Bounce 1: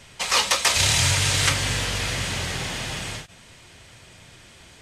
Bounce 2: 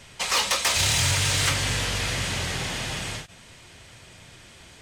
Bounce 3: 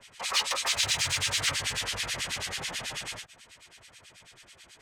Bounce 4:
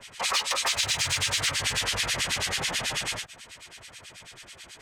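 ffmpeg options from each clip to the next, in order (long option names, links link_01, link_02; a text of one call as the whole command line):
ffmpeg -i in.wav -af "asoftclip=type=tanh:threshold=-16dB" out.wav
ffmpeg -i in.wav -filter_complex "[0:a]lowshelf=frequency=450:gain=-12,acrossover=split=1500[link_01][link_02];[link_01]aeval=exprs='val(0)*(1-1/2+1/2*cos(2*PI*9.2*n/s))':channel_layout=same[link_03];[link_02]aeval=exprs='val(0)*(1-1/2-1/2*cos(2*PI*9.2*n/s))':channel_layout=same[link_04];[link_03][link_04]amix=inputs=2:normalize=0,acrossover=split=270|1500|7100[link_05][link_06][link_07][link_08];[link_08]alimiter=level_in=8dB:limit=-24dB:level=0:latency=1:release=32,volume=-8dB[link_09];[link_05][link_06][link_07][link_09]amix=inputs=4:normalize=0,volume=1dB" out.wav
ffmpeg -i in.wav -af "acompressor=threshold=-30dB:ratio=6,volume=7dB" out.wav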